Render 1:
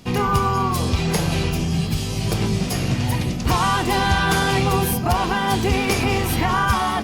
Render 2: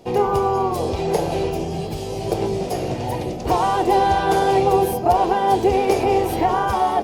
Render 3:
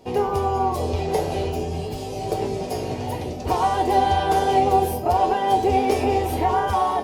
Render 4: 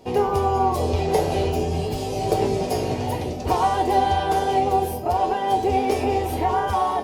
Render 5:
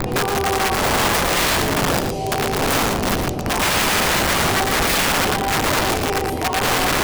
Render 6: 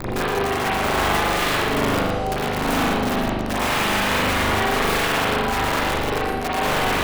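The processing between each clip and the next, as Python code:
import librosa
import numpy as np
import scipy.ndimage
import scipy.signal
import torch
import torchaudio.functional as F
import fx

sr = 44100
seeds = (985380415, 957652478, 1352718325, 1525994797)

y1 = fx.band_shelf(x, sr, hz=540.0, db=14.5, octaves=1.7)
y1 = F.gain(torch.from_numpy(y1), -7.5).numpy()
y2 = fx.comb_fb(y1, sr, f0_hz=85.0, decay_s=0.27, harmonics='odd', damping=0.0, mix_pct=80)
y2 = F.gain(torch.from_numpy(y2), 6.5).numpy()
y3 = fx.rider(y2, sr, range_db=4, speed_s=2.0)
y4 = fx.dmg_wind(y3, sr, seeds[0], corner_hz=310.0, level_db=-16.0)
y4 = (np.mod(10.0 ** (14.0 / 20.0) * y4 + 1.0, 2.0) - 1.0) / 10.0 ** (14.0 / 20.0)
y4 = y4 + 10.0 ** (-6.0 / 20.0) * np.pad(y4, (int(116 * sr / 1000.0), 0))[:len(y4)]
y5 = fx.rev_spring(y4, sr, rt60_s=1.0, pass_ms=(40,), chirp_ms=25, drr_db=-6.5)
y5 = F.gain(torch.from_numpy(y5), -9.0).numpy()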